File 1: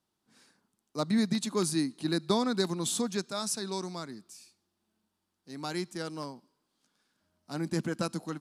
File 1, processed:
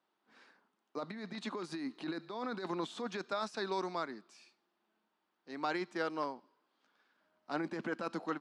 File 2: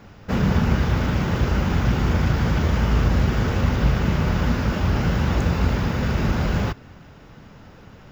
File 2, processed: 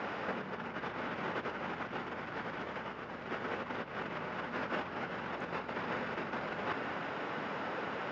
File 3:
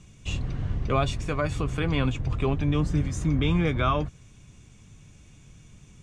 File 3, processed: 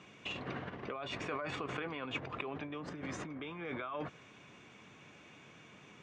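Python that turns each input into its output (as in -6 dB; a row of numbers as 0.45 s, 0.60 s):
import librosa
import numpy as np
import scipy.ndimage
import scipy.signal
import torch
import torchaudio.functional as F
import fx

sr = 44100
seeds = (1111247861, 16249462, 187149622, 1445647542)

y = fx.low_shelf(x, sr, hz=440.0, db=-7.0)
y = fx.over_compress(y, sr, threshold_db=-37.0, ratio=-1.0)
y = fx.bandpass_edges(y, sr, low_hz=300.0, high_hz=2400.0)
y = F.gain(torch.from_numpy(y), 3.0).numpy()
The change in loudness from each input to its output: -7.5 LU, -17.5 LU, -14.5 LU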